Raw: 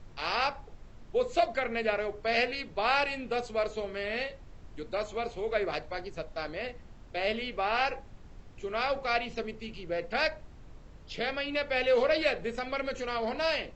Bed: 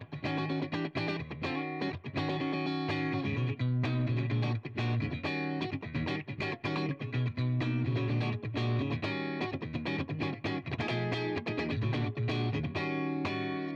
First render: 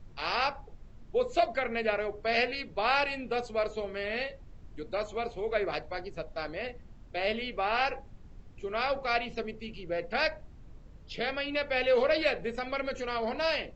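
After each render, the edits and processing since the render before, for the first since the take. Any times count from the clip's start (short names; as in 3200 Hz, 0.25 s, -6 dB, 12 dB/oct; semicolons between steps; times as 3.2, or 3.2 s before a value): denoiser 6 dB, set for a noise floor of -51 dBFS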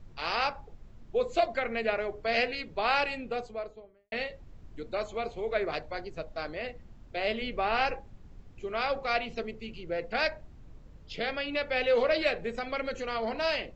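3.05–4.12 studio fade out; 7.41–7.95 low shelf 340 Hz +5.5 dB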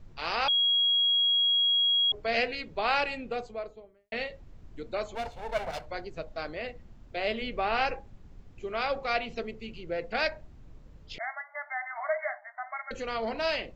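0.48–2.12 bleep 3300 Hz -21.5 dBFS; 5.15–5.86 minimum comb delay 1.4 ms; 11.18–12.91 brick-wall FIR band-pass 600–2200 Hz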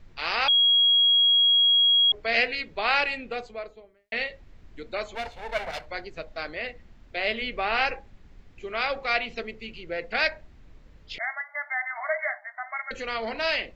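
ten-band EQ 125 Hz -4 dB, 2000 Hz +7 dB, 4000 Hz +4 dB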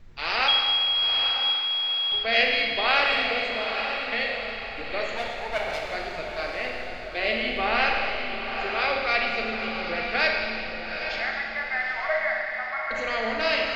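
on a send: diffused feedback echo 0.87 s, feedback 41%, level -6.5 dB; on the sum: Schroeder reverb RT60 2.2 s, combs from 28 ms, DRR 0.5 dB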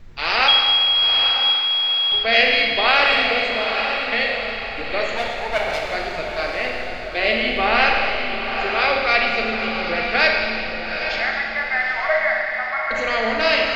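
gain +6.5 dB; limiter -2 dBFS, peak gain reduction 2 dB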